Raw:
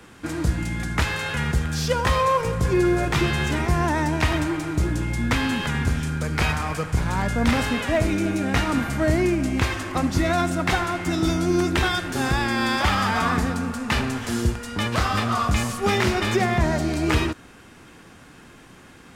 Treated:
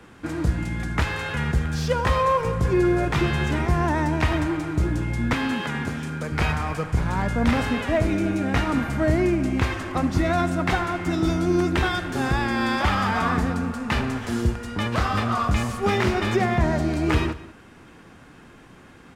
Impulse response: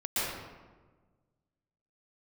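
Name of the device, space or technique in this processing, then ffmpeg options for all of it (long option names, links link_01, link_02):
behind a face mask: -filter_complex "[0:a]highshelf=frequency=3300:gain=-8,asettb=1/sr,asplit=3[link_01][link_02][link_03];[link_01]atrim=end=5.334[link_04];[link_02]atrim=start=5.33:end=6.32,asetpts=PTS-STARTPTS,afade=type=in:duration=0.004:curve=qsin,afade=type=out:start_time=0.986:duration=0.004:curve=qsin,highpass=170[link_05];[link_03]atrim=start=6.316[link_06];[link_04][link_05]acrossfade=duration=0.004:curve1=hsin:curve2=qsin[link_07];[link_07][link_06]acrossfade=duration=0.004:curve1=qsin:curve2=hsin,asplit=2[link_08][link_09];[link_09]adelay=192.4,volume=-18dB,highshelf=frequency=4000:gain=-4.33[link_10];[link_08][link_10]amix=inputs=2:normalize=0"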